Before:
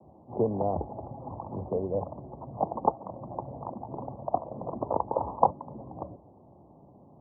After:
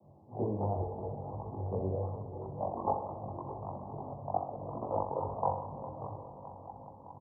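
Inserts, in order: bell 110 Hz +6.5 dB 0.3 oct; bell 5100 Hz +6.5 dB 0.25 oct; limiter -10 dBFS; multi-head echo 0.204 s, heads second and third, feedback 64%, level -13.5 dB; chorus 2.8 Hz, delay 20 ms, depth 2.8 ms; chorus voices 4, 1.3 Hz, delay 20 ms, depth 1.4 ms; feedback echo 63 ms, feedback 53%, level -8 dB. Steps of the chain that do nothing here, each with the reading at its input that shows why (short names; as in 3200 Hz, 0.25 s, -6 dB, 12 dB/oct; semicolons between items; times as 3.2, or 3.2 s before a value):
bell 5100 Hz: input band ends at 1300 Hz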